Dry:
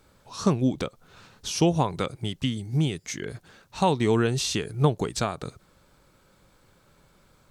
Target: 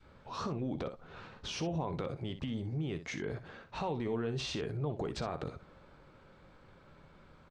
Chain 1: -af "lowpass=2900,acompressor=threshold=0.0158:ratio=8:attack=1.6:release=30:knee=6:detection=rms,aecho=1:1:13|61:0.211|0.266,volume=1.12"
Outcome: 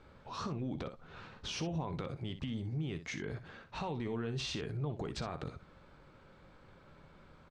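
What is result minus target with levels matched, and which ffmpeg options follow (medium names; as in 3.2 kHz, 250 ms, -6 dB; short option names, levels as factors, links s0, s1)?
500 Hz band -2.5 dB
-af "lowpass=2900,acompressor=threshold=0.0158:ratio=8:attack=1.6:release=30:knee=6:detection=rms,adynamicequalizer=threshold=0.00282:dfrequency=540:dqfactor=0.75:tfrequency=540:tqfactor=0.75:attack=5:release=100:ratio=0.375:range=2.5:mode=boostabove:tftype=bell,aecho=1:1:13|61:0.211|0.266,volume=1.12"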